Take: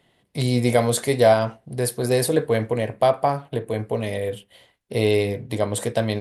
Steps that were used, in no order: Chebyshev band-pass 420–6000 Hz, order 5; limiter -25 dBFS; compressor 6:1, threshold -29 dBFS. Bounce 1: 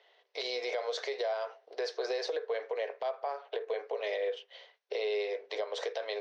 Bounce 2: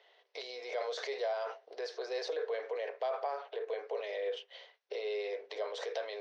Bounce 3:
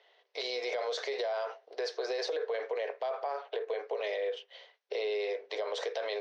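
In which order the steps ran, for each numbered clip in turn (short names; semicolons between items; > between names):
Chebyshev band-pass > compressor > limiter; limiter > Chebyshev band-pass > compressor; Chebyshev band-pass > limiter > compressor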